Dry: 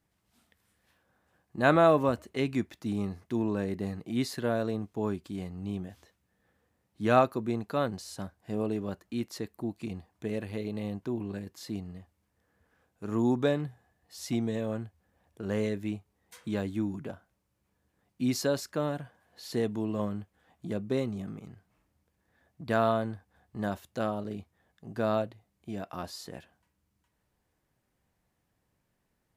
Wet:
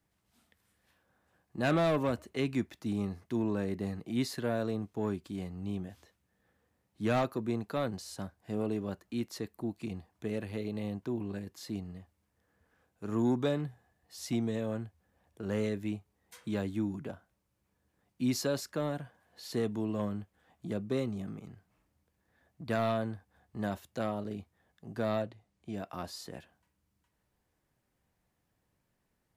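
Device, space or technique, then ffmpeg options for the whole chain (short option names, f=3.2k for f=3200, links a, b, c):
one-band saturation: -filter_complex "[0:a]acrossover=split=280|2600[a][b][c];[b]asoftclip=type=tanh:threshold=-25dB[d];[a][d][c]amix=inputs=3:normalize=0,asettb=1/sr,asplit=3[e][f][g];[e]atrim=end=25.224[h];[f]atrim=start=25.22:end=25.74,asetpts=PTS-STARTPTS,afade=t=in:d=0.004:c=qsin,afade=t=out:st=0.516:d=0.004:c=qsin,lowpass=8.9k[i];[g]atrim=start=25.736[j];[h][i]acrossfade=d=0.004:c1=hsin:c2=qsin[k];[k][j]acrossfade=d=0.004:c1=qsin:c2=hsin,volume=-1.5dB"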